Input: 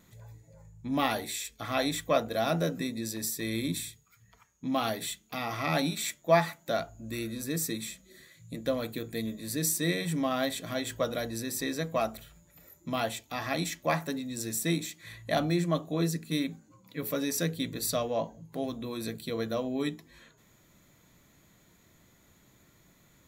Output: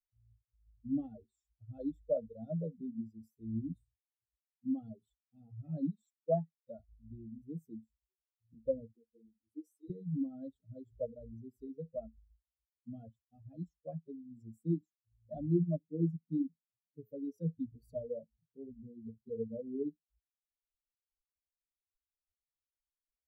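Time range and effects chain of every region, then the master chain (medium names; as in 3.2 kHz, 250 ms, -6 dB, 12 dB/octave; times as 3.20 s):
8.95–9.90 s: static phaser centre 390 Hz, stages 4 + three-phase chorus
whole clip: expander on every frequency bin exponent 3; elliptic low-pass 600 Hz, stop band 40 dB; trim +2 dB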